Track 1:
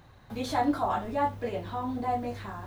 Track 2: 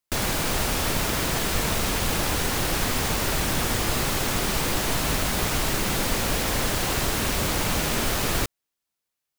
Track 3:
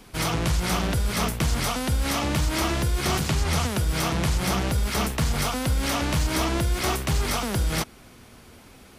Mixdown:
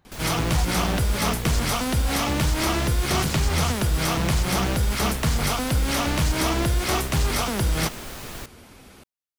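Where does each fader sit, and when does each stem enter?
-9.5 dB, -12.0 dB, +1.5 dB; 0.00 s, 0.00 s, 0.05 s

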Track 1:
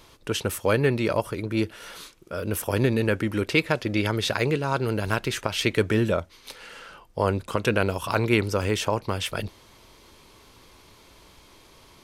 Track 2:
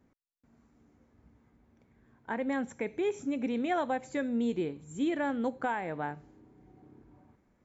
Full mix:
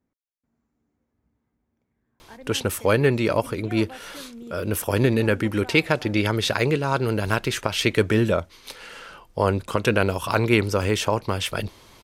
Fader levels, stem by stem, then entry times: +2.5 dB, -10.5 dB; 2.20 s, 0.00 s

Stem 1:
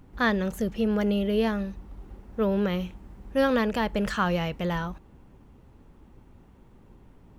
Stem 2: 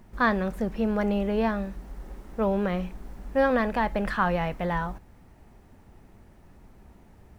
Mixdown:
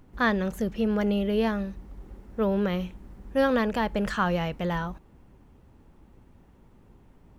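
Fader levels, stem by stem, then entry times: -2.5 dB, -12.0 dB; 0.00 s, 0.00 s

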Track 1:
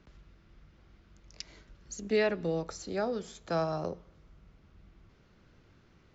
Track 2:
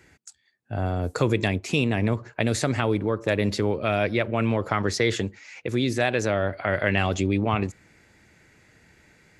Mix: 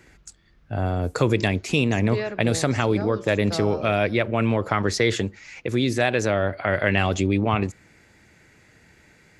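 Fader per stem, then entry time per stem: -1.0 dB, +2.0 dB; 0.00 s, 0.00 s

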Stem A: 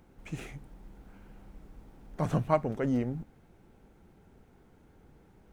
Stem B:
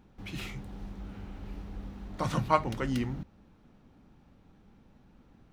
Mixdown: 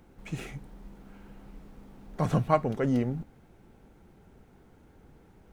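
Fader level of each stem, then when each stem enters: +2.5 dB, -11.5 dB; 0.00 s, 0.00 s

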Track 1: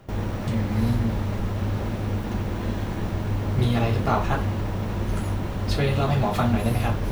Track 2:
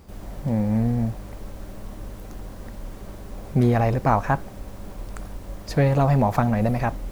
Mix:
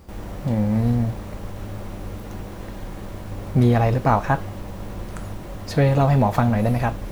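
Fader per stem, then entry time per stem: -7.5 dB, +1.0 dB; 0.00 s, 0.00 s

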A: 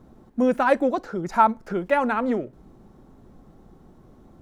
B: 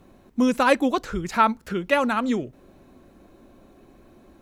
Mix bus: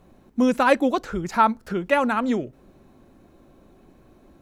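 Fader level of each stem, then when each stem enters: -7.0 dB, -3.0 dB; 0.00 s, 0.00 s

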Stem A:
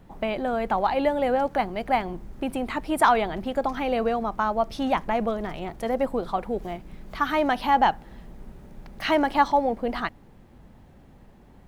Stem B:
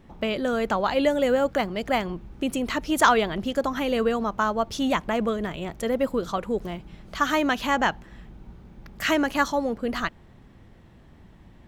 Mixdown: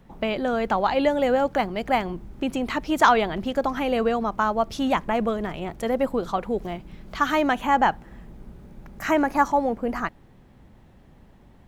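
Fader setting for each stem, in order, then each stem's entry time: -3.0 dB, -5.5 dB; 0.00 s, 0.00 s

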